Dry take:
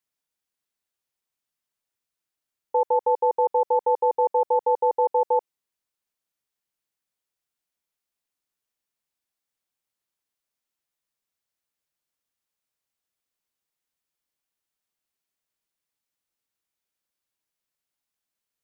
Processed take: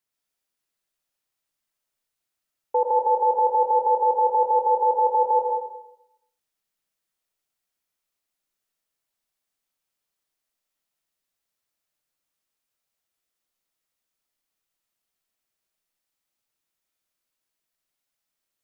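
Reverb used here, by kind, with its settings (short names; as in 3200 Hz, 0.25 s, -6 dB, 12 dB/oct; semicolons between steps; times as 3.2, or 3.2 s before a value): digital reverb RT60 0.82 s, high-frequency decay 1×, pre-delay 65 ms, DRR -0.5 dB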